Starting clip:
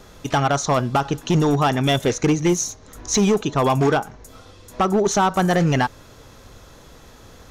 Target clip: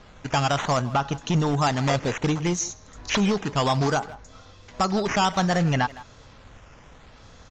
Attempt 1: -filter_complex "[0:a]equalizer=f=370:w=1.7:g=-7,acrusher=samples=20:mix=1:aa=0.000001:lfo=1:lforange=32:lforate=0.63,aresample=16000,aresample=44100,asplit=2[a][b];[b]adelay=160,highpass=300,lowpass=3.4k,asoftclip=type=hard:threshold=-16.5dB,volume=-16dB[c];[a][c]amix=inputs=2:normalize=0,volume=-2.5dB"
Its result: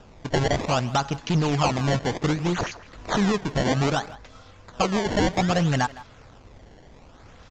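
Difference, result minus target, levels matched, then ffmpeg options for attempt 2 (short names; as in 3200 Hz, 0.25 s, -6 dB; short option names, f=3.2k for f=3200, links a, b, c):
decimation with a swept rate: distortion +8 dB
-filter_complex "[0:a]equalizer=f=370:w=1.7:g=-7,acrusher=samples=6:mix=1:aa=0.000001:lfo=1:lforange=9.6:lforate=0.63,aresample=16000,aresample=44100,asplit=2[a][b];[b]adelay=160,highpass=300,lowpass=3.4k,asoftclip=type=hard:threshold=-16.5dB,volume=-16dB[c];[a][c]amix=inputs=2:normalize=0,volume=-2.5dB"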